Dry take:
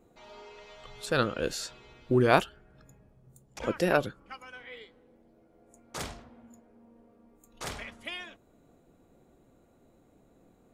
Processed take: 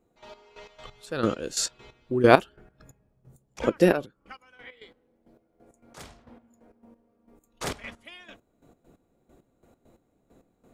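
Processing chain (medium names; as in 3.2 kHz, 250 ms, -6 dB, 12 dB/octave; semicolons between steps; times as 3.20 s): 1.23–1.66 s: peaking EQ 7.2 kHz +9 dB 1.2 oct; 4.05–5.97 s: compression 12:1, threshold -44 dBFS, peak gain reduction 12.5 dB; trance gate "..x..x.x." 134 bpm -12 dB; dynamic bell 310 Hz, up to +6 dB, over -47 dBFS, Q 0.79; trim +4.5 dB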